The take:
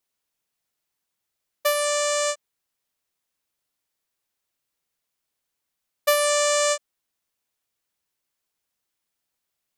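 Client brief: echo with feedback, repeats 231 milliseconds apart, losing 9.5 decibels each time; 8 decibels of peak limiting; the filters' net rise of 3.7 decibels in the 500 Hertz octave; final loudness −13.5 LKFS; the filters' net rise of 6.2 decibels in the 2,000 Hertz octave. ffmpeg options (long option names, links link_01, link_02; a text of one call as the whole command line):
ffmpeg -i in.wav -af "equalizer=frequency=500:width_type=o:gain=4,equalizer=frequency=2000:width_type=o:gain=7,alimiter=limit=-13dB:level=0:latency=1,aecho=1:1:231|462|693|924:0.335|0.111|0.0365|0.012,volume=10dB" out.wav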